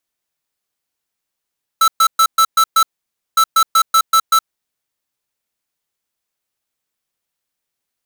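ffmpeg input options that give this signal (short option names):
-f lavfi -i "aevalsrc='0.299*(2*lt(mod(1320*t,1),0.5)-1)*clip(min(mod(mod(t,1.56),0.19),0.07-mod(mod(t,1.56),0.19))/0.005,0,1)*lt(mod(t,1.56),1.14)':d=3.12:s=44100"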